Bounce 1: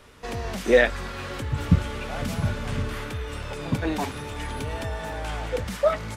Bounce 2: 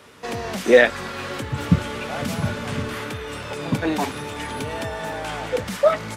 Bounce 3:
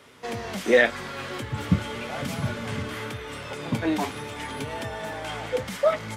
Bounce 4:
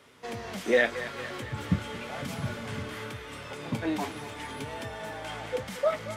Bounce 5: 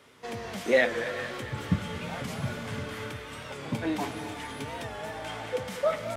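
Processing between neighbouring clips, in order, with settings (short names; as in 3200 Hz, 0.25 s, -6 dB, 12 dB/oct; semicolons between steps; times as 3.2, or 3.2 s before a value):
HPF 130 Hz 12 dB/oct; gain +4.5 dB
flange 0.87 Hz, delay 7.1 ms, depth 2.9 ms, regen +67%; small resonant body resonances 2100/3200 Hz, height 6 dB, ringing for 25 ms
thinning echo 0.227 s, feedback 65%, level -12.5 dB; gain -5 dB
on a send at -9 dB: reverb, pre-delay 3 ms; on the sum: record warp 45 rpm, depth 100 cents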